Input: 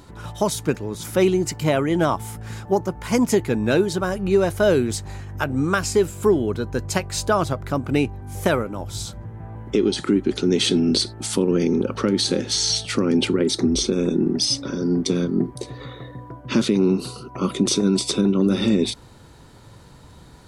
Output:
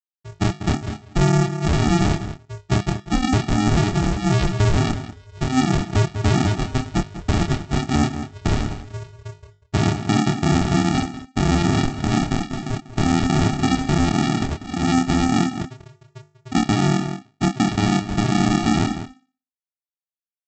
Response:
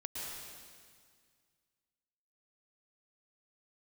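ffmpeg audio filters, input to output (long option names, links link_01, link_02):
-filter_complex "[0:a]lowpass=frequency=4700:width=0.5412,lowpass=frequency=4700:width=1.3066,afftfilt=real='re*gte(hypot(re,im),0.251)':imag='im*gte(hypot(re,im),0.251)':win_size=1024:overlap=0.75,bandreject=frequency=50:width_type=h:width=6,bandreject=frequency=100:width_type=h:width=6,bandreject=frequency=150:width_type=h:width=6,bandreject=frequency=200:width_type=h:width=6,bandreject=frequency=250:width_type=h:width=6,bandreject=frequency=300:width_type=h:width=6,adynamicequalizer=threshold=0.01:dfrequency=170:dqfactor=7.9:tfrequency=170:tqfactor=7.9:attack=5:release=100:ratio=0.375:range=3:mode=cutabove:tftype=bell,aresample=16000,acrusher=samples=31:mix=1:aa=0.000001,aresample=44100,asplit=2[link_01][link_02];[link_02]adelay=27,volume=-5dB[link_03];[link_01][link_03]amix=inputs=2:normalize=0,asplit=2[link_04][link_05];[link_05]adelay=192.4,volume=-14dB,highshelf=frequency=4000:gain=-4.33[link_06];[link_04][link_06]amix=inputs=2:normalize=0,alimiter=level_in=13dB:limit=-1dB:release=50:level=0:latency=1,volume=-9dB"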